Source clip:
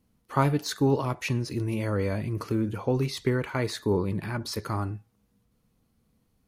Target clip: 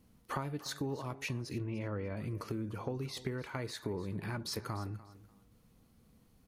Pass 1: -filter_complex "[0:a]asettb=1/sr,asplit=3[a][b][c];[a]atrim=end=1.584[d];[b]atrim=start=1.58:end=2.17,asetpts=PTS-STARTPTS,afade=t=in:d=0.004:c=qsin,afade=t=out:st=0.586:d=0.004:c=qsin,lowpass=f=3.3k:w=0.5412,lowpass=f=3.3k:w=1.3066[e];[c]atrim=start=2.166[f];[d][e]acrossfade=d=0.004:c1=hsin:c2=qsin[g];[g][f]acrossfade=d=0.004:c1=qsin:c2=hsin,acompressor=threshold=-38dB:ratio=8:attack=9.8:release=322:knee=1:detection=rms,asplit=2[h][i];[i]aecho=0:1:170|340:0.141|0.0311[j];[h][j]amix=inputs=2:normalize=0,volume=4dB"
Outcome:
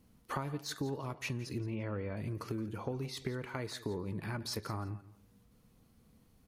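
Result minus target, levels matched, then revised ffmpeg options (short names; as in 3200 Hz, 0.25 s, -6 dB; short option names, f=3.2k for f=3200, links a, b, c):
echo 0.125 s early
-filter_complex "[0:a]asettb=1/sr,asplit=3[a][b][c];[a]atrim=end=1.584[d];[b]atrim=start=1.58:end=2.17,asetpts=PTS-STARTPTS,afade=t=in:d=0.004:c=qsin,afade=t=out:st=0.586:d=0.004:c=qsin,lowpass=f=3.3k:w=0.5412,lowpass=f=3.3k:w=1.3066[e];[c]atrim=start=2.166[f];[d][e]acrossfade=d=0.004:c1=hsin:c2=qsin[g];[g][f]acrossfade=d=0.004:c1=qsin:c2=hsin,acompressor=threshold=-38dB:ratio=8:attack=9.8:release=322:knee=1:detection=rms,asplit=2[h][i];[i]aecho=0:1:295|590:0.141|0.0311[j];[h][j]amix=inputs=2:normalize=0,volume=4dB"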